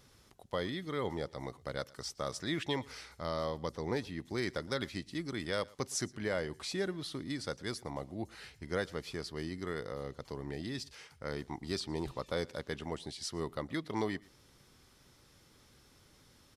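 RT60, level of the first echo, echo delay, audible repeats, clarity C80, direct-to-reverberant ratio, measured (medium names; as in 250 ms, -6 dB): no reverb, -24.0 dB, 115 ms, 1, no reverb, no reverb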